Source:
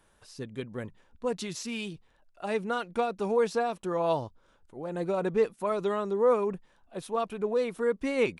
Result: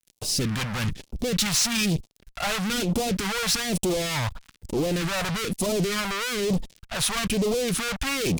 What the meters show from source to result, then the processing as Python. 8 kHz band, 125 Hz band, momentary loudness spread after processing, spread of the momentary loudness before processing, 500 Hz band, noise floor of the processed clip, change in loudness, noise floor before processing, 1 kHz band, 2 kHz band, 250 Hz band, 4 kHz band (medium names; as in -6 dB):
+20.0 dB, +13.5 dB, 8 LU, 16 LU, -2.0 dB, -66 dBFS, +4.5 dB, -65 dBFS, +0.5 dB, +10.0 dB, +7.5 dB, +17.5 dB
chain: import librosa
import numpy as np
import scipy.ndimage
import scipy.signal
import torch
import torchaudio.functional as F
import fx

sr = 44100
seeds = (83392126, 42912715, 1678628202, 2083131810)

y = fx.fuzz(x, sr, gain_db=53.0, gate_db=-57.0)
y = fx.phaser_stages(y, sr, stages=2, low_hz=320.0, high_hz=1600.0, hz=1.1, feedback_pct=25)
y = y * librosa.db_to_amplitude(-7.5)